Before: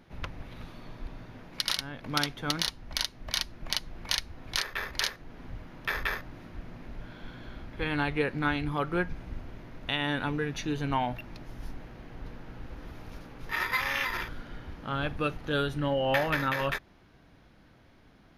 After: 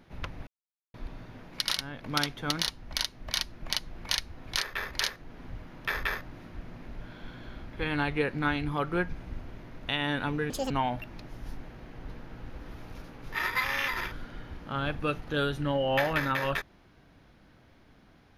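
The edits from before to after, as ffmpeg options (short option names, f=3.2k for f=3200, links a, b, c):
-filter_complex "[0:a]asplit=5[a][b][c][d][e];[a]atrim=end=0.47,asetpts=PTS-STARTPTS,afade=t=out:st=0.466:d=0.004:c=hsin[f];[b]atrim=start=0.47:end=0.94,asetpts=PTS-STARTPTS,volume=0[g];[c]atrim=start=0.94:end=10.504,asetpts=PTS-STARTPTS,afade=t=in:d=0.004:c=hsin[h];[d]atrim=start=10.5:end=10.87,asetpts=PTS-STARTPTS,asetrate=80262,aresample=44100,atrim=end_sample=8965,asetpts=PTS-STARTPTS[i];[e]atrim=start=10.866[j];[f][g][h]concat=n=3:v=0:a=1[k];[k][i]acrossfade=d=0.004:c1=hsin:c2=hsin[l];[l][j]acrossfade=d=0.004:c1=hsin:c2=hsin"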